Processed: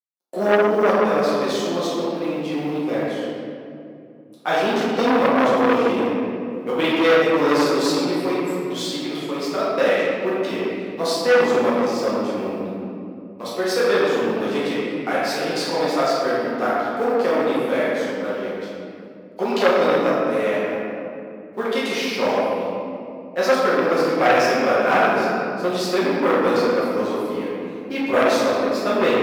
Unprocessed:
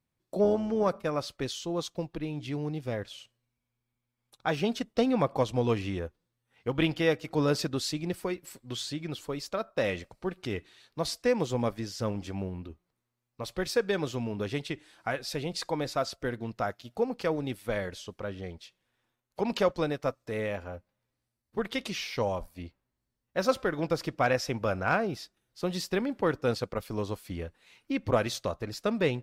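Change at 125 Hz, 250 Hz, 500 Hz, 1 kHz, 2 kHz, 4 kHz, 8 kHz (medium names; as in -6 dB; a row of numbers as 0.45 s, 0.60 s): -0.5 dB, +10.0 dB, +12.0 dB, +13.5 dB, +12.5 dB, +9.0 dB, +7.0 dB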